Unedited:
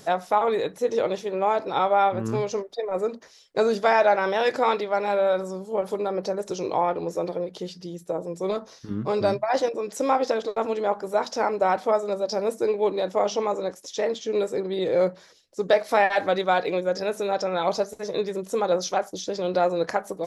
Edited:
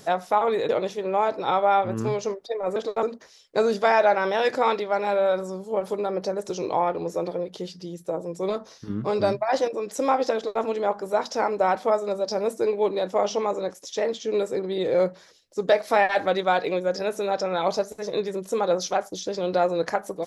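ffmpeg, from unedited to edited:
ffmpeg -i in.wav -filter_complex "[0:a]asplit=4[link_01][link_02][link_03][link_04];[link_01]atrim=end=0.692[link_05];[link_02]atrim=start=0.968:end=3.042[link_06];[link_03]atrim=start=10.358:end=10.632[link_07];[link_04]atrim=start=3.038[link_08];[link_05][link_06]acrossfade=duration=0.004:curve1=hsin:curve2=hsin[link_09];[link_09][link_07]acrossfade=duration=0.004:curve1=hsin:curve2=hsin[link_10];[link_10][link_08]acrossfade=duration=0.004:curve1=hsin:curve2=hsin" out.wav

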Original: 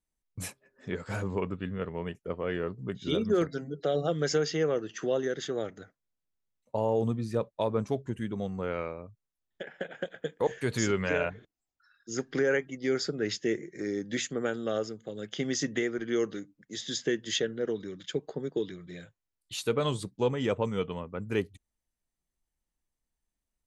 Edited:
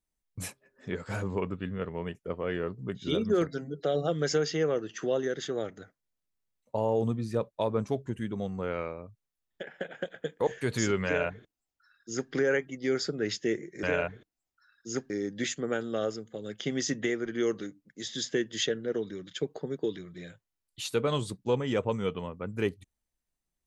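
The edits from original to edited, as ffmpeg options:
ffmpeg -i in.wav -filter_complex "[0:a]asplit=3[link_01][link_02][link_03];[link_01]atrim=end=13.832[link_04];[link_02]atrim=start=11.048:end=12.322[link_05];[link_03]atrim=start=13.828[link_06];[link_04][link_05]acrossfade=duration=0.004:curve1=hsin:curve2=hsin[link_07];[link_07][link_06]acrossfade=duration=0.004:curve1=hsin:curve2=hsin" out.wav

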